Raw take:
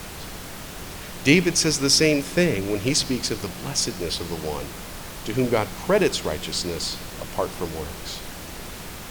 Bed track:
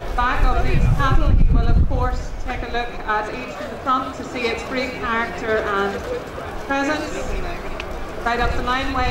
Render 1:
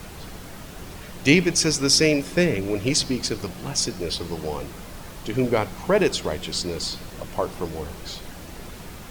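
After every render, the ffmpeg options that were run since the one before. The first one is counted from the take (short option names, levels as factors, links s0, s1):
-af "afftdn=nr=6:nf=-37"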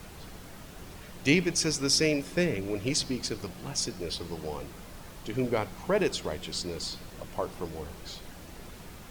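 -af "volume=0.447"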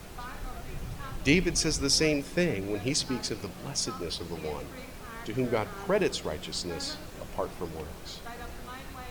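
-filter_complex "[1:a]volume=0.0708[s0];[0:a][s0]amix=inputs=2:normalize=0"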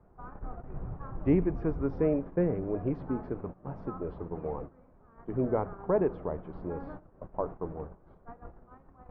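-af "agate=range=0.178:threshold=0.0126:ratio=16:detection=peak,lowpass=f=1200:w=0.5412,lowpass=f=1200:w=1.3066"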